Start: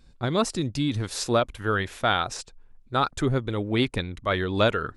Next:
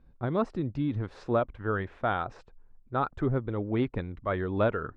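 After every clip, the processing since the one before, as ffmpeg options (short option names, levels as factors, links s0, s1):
-af "lowpass=1400,volume=0.668"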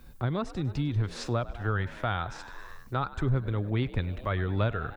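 -filter_complex "[0:a]asplit=7[s0][s1][s2][s3][s4][s5][s6];[s1]adelay=100,afreqshift=63,volume=0.106[s7];[s2]adelay=200,afreqshift=126,volume=0.0692[s8];[s3]adelay=300,afreqshift=189,volume=0.0447[s9];[s4]adelay=400,afreqshift=252,volume=0.0292[s10];[s5]adelay=500,afreqshift=315,volume=0.0188[s11];[s6]adelay=600,afreqshift=378,volume=0.0123[s12];[s0][s7][s8][s9][s10][s11][s12]amix=inputs=7:normalize=0,acrossover=split=130[s13][s14];[s14]acompressor=threshold=0.00251:ratio=2[s15];[s13][s15]amix=inputs=2:normalize=0,crystalizer=i=8:c=0,volume=2.51"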